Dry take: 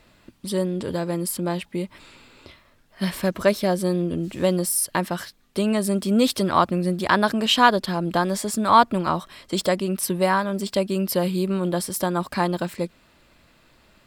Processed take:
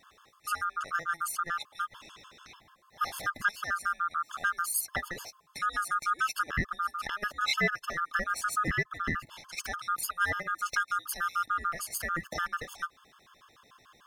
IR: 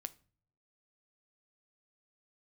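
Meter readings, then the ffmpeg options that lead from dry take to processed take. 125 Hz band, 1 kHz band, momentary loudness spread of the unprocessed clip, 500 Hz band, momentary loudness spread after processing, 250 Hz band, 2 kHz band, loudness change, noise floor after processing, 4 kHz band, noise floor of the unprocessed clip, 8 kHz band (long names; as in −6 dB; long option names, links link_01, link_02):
−16.5 dB, −8.0 dB, 11 LU, −21.5 dB, 10 LU, −22.5 dB, −1.0 dB, −9.0 dB, −63 dBFS, −11.5 dB, −58 dBFS, −8.0 dB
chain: -af "afftfilt=real='real(if(lt(b,960),b+48*(1-2*mod(floor(b/48),2)),b),0)':imag='imag(if(lt(b,960),b+48*(1-2*mod(floor(b/48),2)),b),0)':win_size=2048:overlap=0.75,acompressor=threshold=-28dB:ratio=2.5,afftfilt=real='re*gt(sin(2*PI*6.8*pts/sr)*(1-2*mod(floor(b*sr/1024/880),2)),0)':imag='im*gt(sin(2*PI*6.8*pts/sr)*(1-2*mod(floor(b*sr/1024/880),2)),0)':win_size=1024:overlap=0.75"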